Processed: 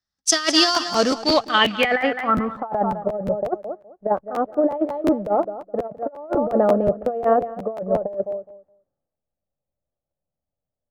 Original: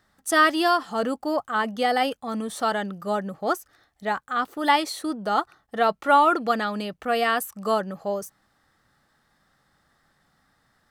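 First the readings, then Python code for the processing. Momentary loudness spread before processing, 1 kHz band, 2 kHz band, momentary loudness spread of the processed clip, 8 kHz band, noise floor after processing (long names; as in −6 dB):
11 LU, −1.5 dB, 0.0 dB, 12 LU, can't be measured, below −85 dBFS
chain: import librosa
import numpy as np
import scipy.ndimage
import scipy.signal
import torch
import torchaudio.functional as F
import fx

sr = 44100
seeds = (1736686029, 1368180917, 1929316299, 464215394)

p1 = fx.backlash(x, sr, play_db=-37.0)
p2 = x + (p1 * 10.0 ** (-5.0 / 20.0))
p3 = fx.quant_float(p2, sr, bits=2)
p4 = fx.filter_sweep_lowpass(p3, sr, from_hz=5500.0, to_hz=580.0, start_s=1.11, end_s=3.04, q=4.8)
p5 = p4 + fx.echo_feedback(p4, sr, ms=208, feedback_pct=29, wet_db=-14.5, dry=0)
p6 = fx.over_compress(p5, sr, threshold_db=-17.0, ratio=-0.5)
p7 = fx.buffer_crackle(p6, sr, first_s=0.74, period_s=0.18, block=512, kind='repeat')
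p8 = fx.band_widen(p7, sr, depth_pct=70)
y = p8 * 10.0 ** (-2.0 / 20.0)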